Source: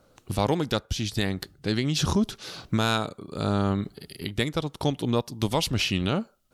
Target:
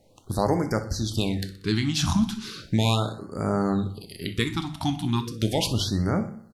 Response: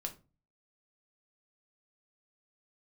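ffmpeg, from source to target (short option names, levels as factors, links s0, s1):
-filter_complex "[0:a]aecho=1:1:62|124|186|248|310|372:0.141|0.0833|0.0492|0.029|0.0171|0.0101,asplit=2[s0][s1];[1:a]atrim=start_sample=2205,afade=t=out:st=0.16:d=0.01,atrim=end_sample=7497,asetrate=25137,aresample=44100[s2];[s1][s2]afir=irnorm=-1:irlink=0,volume=1.06[s3];[s0][s3]amix=inputs=2:normalize=0,afftfilt=real='re*(1-between(b*sr/1024,440*pow(3300/440,0.5+0.5*sin(2*PI*0.36*pts/sr))/1.41,440*pow(3300/440,0.5+0.5*sin(2*PI*0.36*pts/sr))*1.41))':imag='im*(1-between(b*sr/1024,440*pow(3300/440,0.5+0.5*sin(2*PI*0.36*pts/sr))/1.41,440*pow(3300/440,0.5+0.5*sin(2*PI*0.36*pts/sr))*1.41))':win_size=1024:overlap=0.75,volume=0.501"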